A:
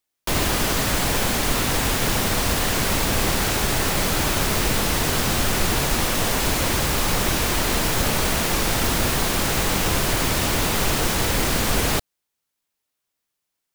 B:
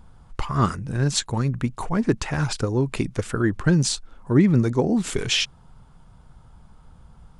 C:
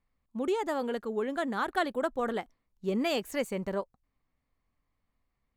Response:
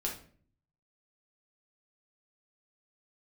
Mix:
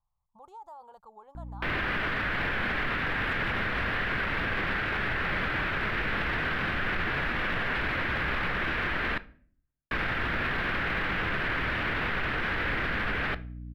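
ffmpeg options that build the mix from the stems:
-filter_complex "[0:a]aeval=exprs='val(0)+0.02*(sin(2*PI*60*n/s)+sin(2*PI*2*60*n/s)/2+sin(2*PI*3*60*n/s)/3+sin(2*PI*4*60*n/s)/4+sin(2*PI*5*60*n/s)/5)':c=same,firequalizer=gain_entry='entry(900,0);entry(1600,13);entry(6700,-30)':delay=0.05:min_phase=1,adelay=1350,volume=0.531,asplit=3[s0][s1][s2];[s0]atrim=end=9.18,asetpts=PTS-STARTPTS,afade=t=out:st=9.176:d=0.004:c=hsin[s3];[s1]atrim=start=9.18:end=9.91,asetpts=PTS-STARTPTS,volume=0[s4];[s2]atrim=start=9.91,asetpts=PTS-STARTPTS,afade=t=in:d=0.004:c=hsin[s5];[s3][s4][s5]concat=n=3:v=0:a=1,asplit=2[s6][s7];[s7]volume=0.106[s8];[2:a]acompressor=threshold=0.0126:ratio=2,volume=0.631,firequalizer=gain_entry='entry(150,0);entry(240,-27);entry(870,9);entry(1900,-24);entry(3900,-11)':delay=0.05:min_phase=1,alimiter=level_in=6.31:limit=0.0631:level=0:latency=1:release=27,volume=0.158,volume=1[s9];[3:a]atrim=start_sample=2205[s10];[s8][s10]afir=irnorm=-1:irlink=0[s11];[s6][s9][s11]amix=inputs=3:normalize=0,alimiter=limit=0.0841:level=0:latency=1:release=19"

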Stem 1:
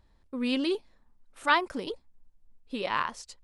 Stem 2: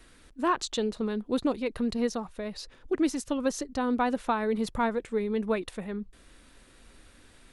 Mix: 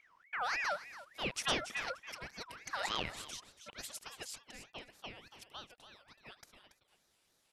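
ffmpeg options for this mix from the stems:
-filter_complex "[0:a]acompressor=threshold=0.0251:ratio=2,volume=0.891,asplit=2[s0][s1];[s1]volume=0.168[s2];[1:a]highpass=1400,adelay=750,volume=0.75,afade=t=out:st=4.13:d=0.43:silence=0.375837,asplit=2[s3][s4];[s4]volume=0.299[s5];[s2][s5]amix=inputs=2:normalize=0,aecho=0:1:281:1[s6];[s0][s3][s6]amix=inputs=3:normalize=0,aeval=exprs='val(0)*sin(2*PI*1600*n/s+1600*0.4/3.4*sin(2*PI*3.4*n/s))':c=same"

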